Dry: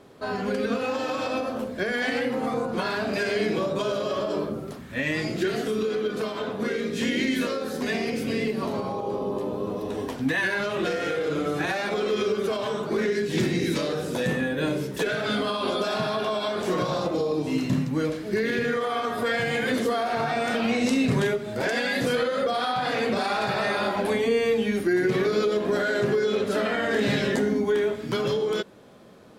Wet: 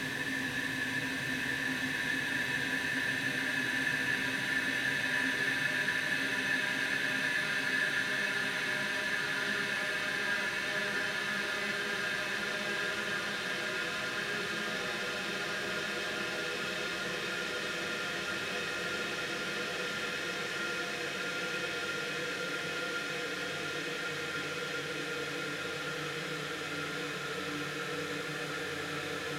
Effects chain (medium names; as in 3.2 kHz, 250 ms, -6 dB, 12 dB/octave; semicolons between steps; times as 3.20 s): amplifier tone stack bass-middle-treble 5-5-5; thinning echo 504 ms, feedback 82%, high-pass 420 Hz, level -11.5 dB; Paulstretch 25×, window 1.00 s, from 10.19 s; trim +5.5 dB